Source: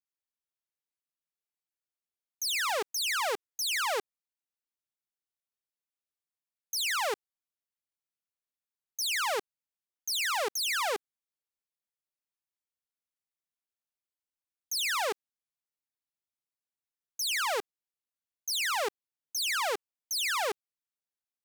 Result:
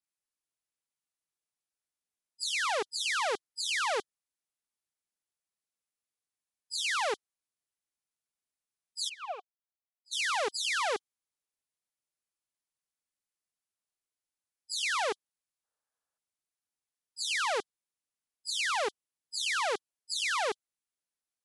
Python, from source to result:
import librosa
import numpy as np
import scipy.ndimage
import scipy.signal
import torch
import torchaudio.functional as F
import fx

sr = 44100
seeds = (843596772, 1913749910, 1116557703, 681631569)

y = fx.freq_compress(x, sr, knee_hz=3000.0, ratio=1.5)
y = fx.vowel_filter(y, sr, vowel='a', at=(9.08, 10.11), fade=0.02)
y = fx.spec_box(y, sr, start_s=15.65, length_s=0.53, low_hz=420.0, high_hz=1800.0, gain_db=10)